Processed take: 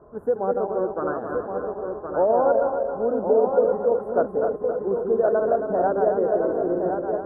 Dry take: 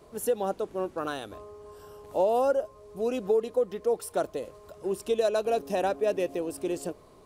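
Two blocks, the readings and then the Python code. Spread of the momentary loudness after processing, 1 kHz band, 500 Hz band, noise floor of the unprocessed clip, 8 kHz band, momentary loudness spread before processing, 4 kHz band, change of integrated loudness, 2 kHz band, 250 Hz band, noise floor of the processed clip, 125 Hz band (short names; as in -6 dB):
8 LU, +7.5 dB, +7.0 dB, -54 dBFS, under -35 dB, 16 LU, under -35 dB, +6.5 dB, +3.5 dB, +6.5 dB, -37 dBFS, +6.0 dB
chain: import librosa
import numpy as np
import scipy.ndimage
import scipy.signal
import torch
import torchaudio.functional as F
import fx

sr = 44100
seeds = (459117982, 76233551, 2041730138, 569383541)

p1 = fx.reverse_delay_fb(x, sr, ms=135, feedback_pct=68, wet_db=-4)
p2 = scipy.signal.sosfilt(scipy.signal.ellip(4, 1.0, 40, 1500.0, 'lowpass', fs=sr, output='sos'), p1)
p3 = p2 + fx.echo_single(p2, sr, ms=1068, db=-6.0, dry=0)
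y = F.gain(torch.from_numpy(p3), 4.0).numpy()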